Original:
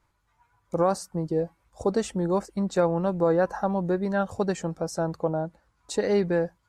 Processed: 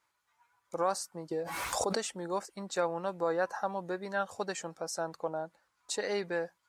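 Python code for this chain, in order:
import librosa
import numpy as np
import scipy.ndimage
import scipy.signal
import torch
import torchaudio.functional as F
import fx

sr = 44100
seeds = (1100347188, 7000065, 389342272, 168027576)

y = fx.highpass(x, sr, hz=1300.0, slope=6)
y = fx.pre_swell(y, sr, db_per_s=26.0, at=(1.31, 1.98))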